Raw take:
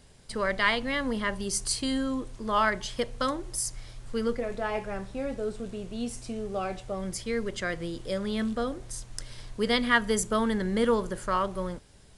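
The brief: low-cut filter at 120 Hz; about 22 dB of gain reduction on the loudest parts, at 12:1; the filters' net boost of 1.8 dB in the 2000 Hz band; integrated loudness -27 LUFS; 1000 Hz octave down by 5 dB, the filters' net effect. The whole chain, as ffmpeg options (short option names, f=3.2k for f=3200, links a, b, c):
-af "highpass=120,equalizer=f=1k:t=o:g=-8,equalizer=f=2k:t=o:g=4.5,acompressor=threshold=-39dB:ratio=12,volume=16dB"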